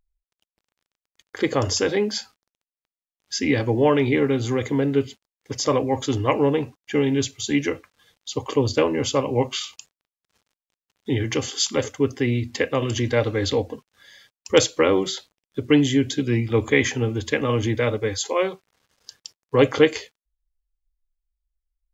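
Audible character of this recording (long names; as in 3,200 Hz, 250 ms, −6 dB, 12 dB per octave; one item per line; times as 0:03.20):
background noise floor −96 dBFS
spectral slope −5.0 dB per octave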